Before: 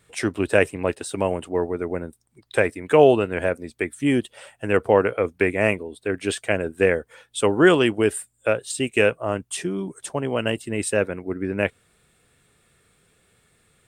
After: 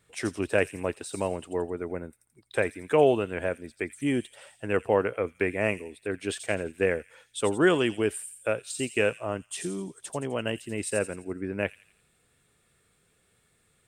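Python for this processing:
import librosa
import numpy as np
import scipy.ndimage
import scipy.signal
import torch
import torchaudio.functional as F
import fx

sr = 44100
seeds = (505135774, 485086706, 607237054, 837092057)

y = fx.echo_wet_highpass(x, sr, ms=85, feedback_pct=46, hz=5400.0, wet_db=-3)
y = F.gain(torch.from_numpy(y), -6.5).numpy()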